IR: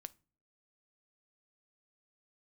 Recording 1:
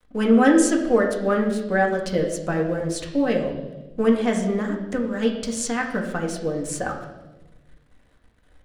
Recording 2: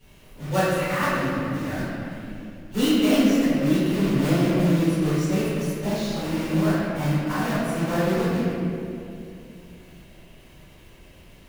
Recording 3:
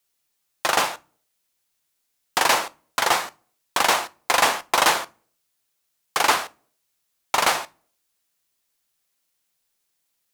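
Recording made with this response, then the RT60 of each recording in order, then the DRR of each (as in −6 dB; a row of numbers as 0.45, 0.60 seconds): 3; 1.1 s, 2.7 s, non-exponential decay; 0.0, −15.0, 14.5 decibels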